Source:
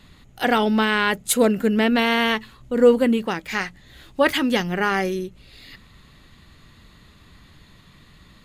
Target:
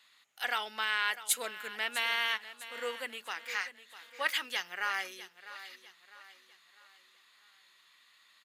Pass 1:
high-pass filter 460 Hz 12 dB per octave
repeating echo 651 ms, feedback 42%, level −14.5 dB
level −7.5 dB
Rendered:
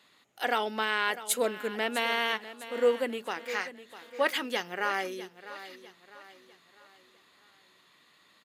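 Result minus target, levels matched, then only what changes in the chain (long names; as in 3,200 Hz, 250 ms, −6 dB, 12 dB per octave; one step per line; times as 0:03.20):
500 Hz band +11.0 dB
change: high-pass filter 1,300 Hz 12 dB per octave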